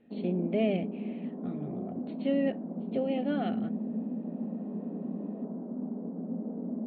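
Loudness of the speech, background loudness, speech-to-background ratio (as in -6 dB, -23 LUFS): -33.0 LUFS, -36.5 LUFS, 3.5 dB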